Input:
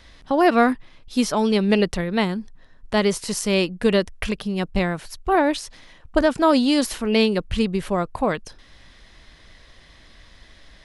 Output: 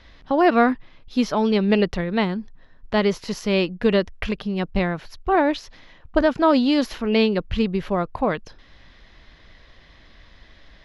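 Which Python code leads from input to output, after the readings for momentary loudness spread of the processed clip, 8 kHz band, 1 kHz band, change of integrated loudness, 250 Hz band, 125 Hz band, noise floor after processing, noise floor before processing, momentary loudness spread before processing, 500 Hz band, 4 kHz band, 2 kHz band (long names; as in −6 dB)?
10 LU, below −10 dB, 0.0 dB, −0.5 dB, 0.0 dB, 0.0 dB, −51 dBFS, −50 dBFS, 10 LU, 0.0 dB, −2.5 dB, −0.5 dB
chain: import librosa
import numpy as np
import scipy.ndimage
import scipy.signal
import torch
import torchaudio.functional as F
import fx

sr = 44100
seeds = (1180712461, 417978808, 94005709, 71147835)

y = np.convolve(x, np.full(5, 1.0 / 5))[:len(x)]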